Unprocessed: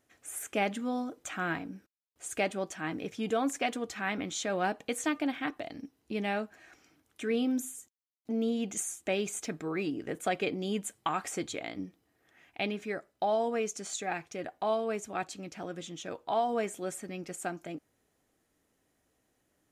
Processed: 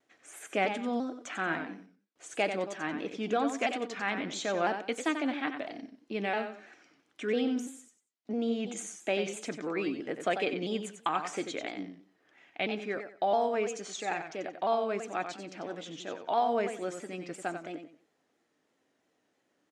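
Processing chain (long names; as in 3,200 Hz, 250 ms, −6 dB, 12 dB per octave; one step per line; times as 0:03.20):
band-pass filter 220–5,400 Hz
repeating echo 92 ms, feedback 27%, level −8 dB
pitch modulation by a square or saw wave saw down 3 Hz, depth 100 cents
level +1 dB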